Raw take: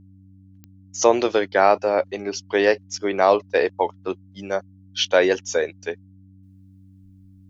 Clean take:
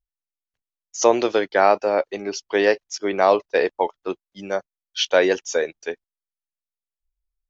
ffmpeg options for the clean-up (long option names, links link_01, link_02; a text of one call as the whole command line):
ffmpeg -i in.wav -af "adeclick=threshold=4,bandreject=frequency=95.4:width_type=h:width=4,bandreject=frequency=190.8:width_type=h:width=4,bandreject=frequency=286.2:width_type=h:width=4,asetnsamples=nb_out_samples=441:pad=0,asendcmd='6.43 volume volume -12dB',volume=0dB" out.wav